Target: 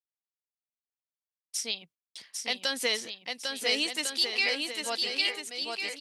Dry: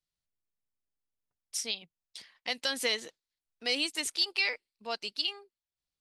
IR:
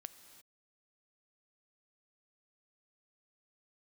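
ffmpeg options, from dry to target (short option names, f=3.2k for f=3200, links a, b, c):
-af "highpass=83,aecho=1:1:800|1400|1850|2188|2441:0.631|0.398|0.251|0.158|0.1,agate=range=-33dB:threshold=-51dB:ratio=3:detection=peak,volume=1.5dB"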